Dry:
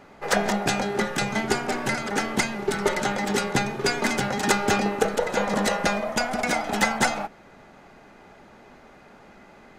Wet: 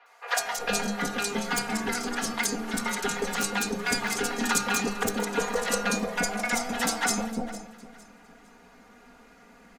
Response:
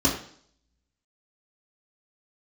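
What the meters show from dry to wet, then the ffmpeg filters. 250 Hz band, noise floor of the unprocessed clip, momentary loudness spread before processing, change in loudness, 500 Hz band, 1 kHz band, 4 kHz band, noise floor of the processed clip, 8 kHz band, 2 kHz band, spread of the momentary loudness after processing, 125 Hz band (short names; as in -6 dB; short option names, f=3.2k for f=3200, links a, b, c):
-3.5 dB, -50 dBFS, 4 LU, -3.5 dB, -6.5 dB, -5.0 dB, -2.0 dB, -55 dBFS, +2.0 dB, -3.0 dB, 4 LU, -7.5 dB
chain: -filter_complex "[0:a]acrossover=split=450|5100[a][b][c];[a]aeval=exprs='(mod(6.31*val(0)+1,2)-1)/6.31':c=same[d];[d][b][c]amix=inputs=3:normalize=0,bandreject=f=50:t=h:w=6,bandreject=f=100:t=h:w=6,bandreject=f=150:t=h:w=6,bandreject=f=200:t=h:w=6,aecho=1:1:4.2:0.92,asplit=2[e][f];[f]aecho=0:1:457|914|1371:0.133|0.0373|0.0105[g];[e][g]amix=inputs=2:normalize=0,crystalizer=i=3:c=0,highshelf=f=5.4k:g=-7,acrossover=split=620|3800[h][i][j];[j]adelay=60[k];[h]adelay=360[l];[l][i][k]amix=inputs=3:normalize=0,volume=-6.5dB"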